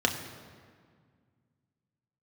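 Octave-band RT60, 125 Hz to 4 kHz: 2.9, 2.6, 1.9, 1.9, 1.6, 1.3 s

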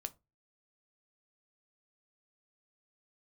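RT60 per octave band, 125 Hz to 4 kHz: 0.40, 0.30, 0.25, 0.20, 0.20, 0.15 s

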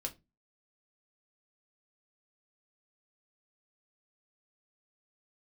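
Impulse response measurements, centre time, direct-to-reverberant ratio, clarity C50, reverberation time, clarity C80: 7 ms, 2.5 dB, 19.0 dB, 0.20 s, 27.0 dB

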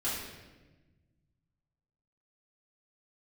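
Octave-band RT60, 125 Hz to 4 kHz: 2.5, 1.9, 1.4, 1.0, 1.1, 0.95 s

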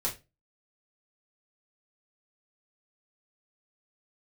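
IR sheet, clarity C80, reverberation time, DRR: 20.0 dB, 0.25 s, -5.0 dB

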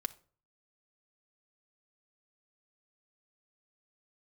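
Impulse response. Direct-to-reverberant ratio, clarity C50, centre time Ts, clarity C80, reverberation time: 6.5 dB, 18.5 dB, 3 ms, 24.0 dB, not exponential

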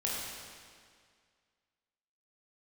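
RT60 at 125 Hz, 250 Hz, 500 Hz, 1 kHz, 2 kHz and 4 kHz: 2.0, 2.0, 2.0, 2.0, 1.9, 1.8 s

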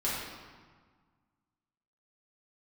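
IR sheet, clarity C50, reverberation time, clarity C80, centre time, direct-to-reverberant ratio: -1.0 dB, 1.6 s, 1.5 dB, 92 ms, -8.5 dB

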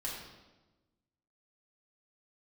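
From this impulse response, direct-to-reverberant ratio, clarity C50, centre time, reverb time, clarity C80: -5.5 dB, 2.0 dB, 58 ms, 1.2 s, 4.5 dB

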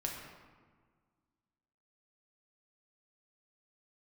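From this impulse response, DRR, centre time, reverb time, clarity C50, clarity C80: -1.0 dB, 63 ms, 1.6 s, 2.5 dB, 4.5 dB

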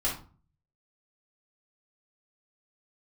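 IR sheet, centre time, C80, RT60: 29 ms, 12.5 dB, 0.40 s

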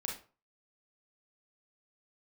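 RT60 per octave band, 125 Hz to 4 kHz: 0.40, 0.35, 0.40, 0.35, 0.30, 0.25 s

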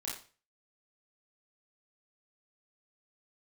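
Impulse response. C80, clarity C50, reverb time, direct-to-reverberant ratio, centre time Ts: 10.0 dB, 4.5 dB, 0.35 s, -5.5 dB, 38 ms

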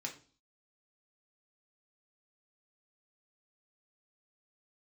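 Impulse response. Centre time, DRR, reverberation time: 15 ms, 0.0 dB, 0.40 s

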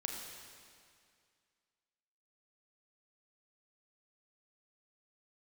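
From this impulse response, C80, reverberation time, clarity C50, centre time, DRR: 3.5 dB, 2.2 s, 2.0 dB, 80 ms, 1.0 dB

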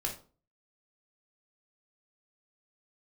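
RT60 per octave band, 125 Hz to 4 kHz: 0.45, 0.45, 0.40, 0.40, 0.25, 0.25 s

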